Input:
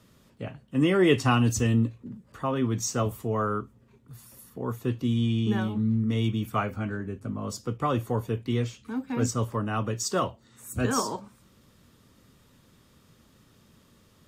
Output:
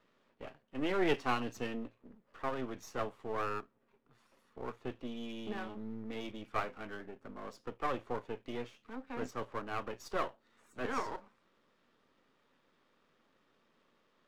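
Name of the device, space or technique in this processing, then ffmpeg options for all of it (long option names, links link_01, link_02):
crystal radio: -af "highpass=380,lowpass=2700,aeval=exprs='if(lt(val(0),0),0.251*val(0),val(0))':channel_layout=same,volume=-3.5dB"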